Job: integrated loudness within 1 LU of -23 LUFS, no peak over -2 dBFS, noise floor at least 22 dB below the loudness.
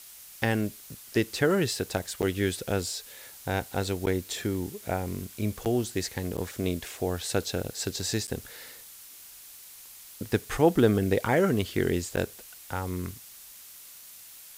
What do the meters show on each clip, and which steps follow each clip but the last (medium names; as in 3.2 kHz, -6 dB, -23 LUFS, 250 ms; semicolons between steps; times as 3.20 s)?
dropouts 6; longest dropout 8.5 ms; noise floor -48 dBFS; noise floor target -51 dBFS; loudness -29.0 LUFS; peak level -8.5 dBFS; loudness target -23.0 LUFS
-> interpolate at 2.22/4.06/5.65/6.37/8.27/12.16 s, 8.5 ms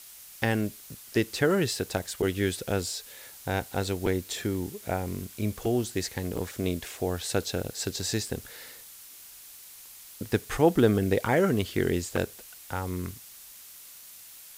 dropouts 0; noise floor -48 dBFS; noise floor target -51 dBFS
-> noise reduction 6 dB, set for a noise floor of -48 dBFS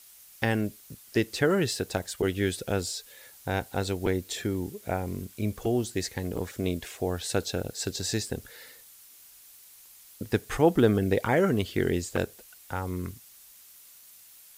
noise floor -53 dBFS; loudness -29.0 LUFS; peak level -8.5 dBFS; loudness target -23.0 LUFS
-> trim +6 dB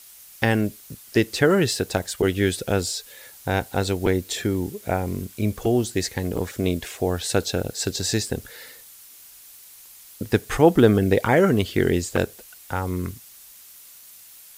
loudness -23.0 LUFS; peak level -2.5 dBFS; noise floor -47 dBFS